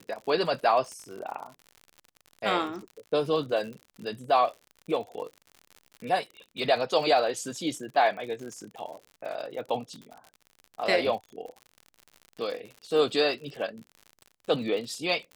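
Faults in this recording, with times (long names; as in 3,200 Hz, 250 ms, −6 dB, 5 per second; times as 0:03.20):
surface crackle 77 per second −37 dBFS
0:00.92: click −28 dBFS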